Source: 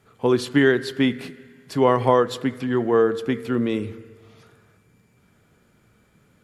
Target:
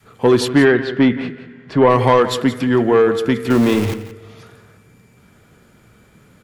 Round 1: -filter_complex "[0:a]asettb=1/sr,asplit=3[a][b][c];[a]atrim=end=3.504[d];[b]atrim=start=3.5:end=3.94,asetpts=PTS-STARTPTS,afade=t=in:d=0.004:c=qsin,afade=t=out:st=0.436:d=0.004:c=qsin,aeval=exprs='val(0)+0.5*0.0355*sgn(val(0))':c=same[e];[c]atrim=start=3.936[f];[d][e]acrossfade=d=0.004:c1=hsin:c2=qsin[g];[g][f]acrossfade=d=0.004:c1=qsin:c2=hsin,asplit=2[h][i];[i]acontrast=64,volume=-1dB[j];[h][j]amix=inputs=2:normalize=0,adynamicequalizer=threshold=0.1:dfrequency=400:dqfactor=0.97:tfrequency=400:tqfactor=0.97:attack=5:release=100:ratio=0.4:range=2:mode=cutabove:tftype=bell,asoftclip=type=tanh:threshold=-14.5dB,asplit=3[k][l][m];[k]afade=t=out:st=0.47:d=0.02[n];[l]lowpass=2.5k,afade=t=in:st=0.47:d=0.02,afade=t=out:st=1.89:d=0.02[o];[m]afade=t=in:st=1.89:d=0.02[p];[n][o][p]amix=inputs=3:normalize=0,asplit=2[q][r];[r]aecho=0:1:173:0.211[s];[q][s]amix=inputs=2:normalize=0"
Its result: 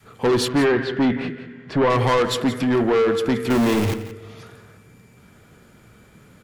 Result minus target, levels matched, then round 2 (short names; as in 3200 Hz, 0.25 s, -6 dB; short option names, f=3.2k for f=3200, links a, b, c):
soft clip: distortion +10 dB
-filter_complex "[0:a]asettb=1/sr,asplit=3[a][b][c];[a]atrim=end=3.504[d];[b]atrim=start=3.5:end=3.94,asetpts=PTS-STARTPTS,afade=t=in:d=0.004:c=qsin,afade=t=out:st=0.436:d=0.004:c=qsin,aeval=exprs='val(0)+0.5*0.0355*sgn(val(0))':c=same[e];[c]atrim=start=3.936[f];[d][e]acrossfade=d=0.004:c1=hsin:c2=qsin[g];[g][f]acrossfade=d=0.004:c1=qsin:c2=hsin,asplit=2[h][i];[i]acontrast=64,volume=-1dB[j];[h][j]amix=inputs=2:normalize=0,adynamicequalizer=threshold=0.1:dfrequency=400:dqfactor=0.97:tfrequency=400:tqfactor=0.97:attack=5:release=100:ratio=0.4:range=2:mode=cutabove:tftype=bell,asoftclip=type=tanh:threshold=-4dB,asplit=3[k][l][m];[k]afade=t=out:st=0.47:d=0.02[n];[l]lowpass=2.5k,afade=t=in:st=0.47:d=0.02,afade=t=out:st=1.89:d=0.02[o];[m]afade=t=in:st=1.89:d=0.02[p];[n][o][p]amix=inputs=3:normalize=0,asplit=2[q][r];[r]aecho=0:1:173:0.211[s];[q][s]amix=inputs=2:normalize=0"